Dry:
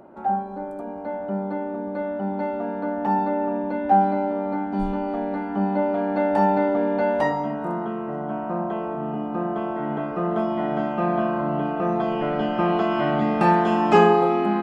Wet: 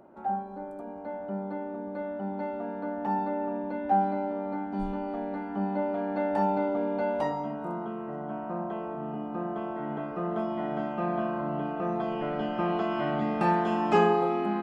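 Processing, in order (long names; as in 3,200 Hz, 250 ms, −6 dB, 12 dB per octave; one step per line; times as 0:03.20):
0:06.42–0:08.00: notch filter 1,800 Hz, Q 6.2
level −7 dB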